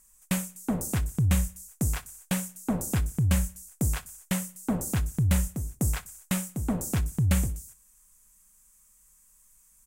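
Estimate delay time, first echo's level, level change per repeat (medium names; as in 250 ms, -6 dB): 60 ms, -23.0 dB, -5.0 dB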